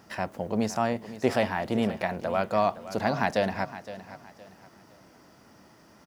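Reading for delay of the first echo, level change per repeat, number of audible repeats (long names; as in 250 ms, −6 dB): 515 ms, −10.0 dB, 3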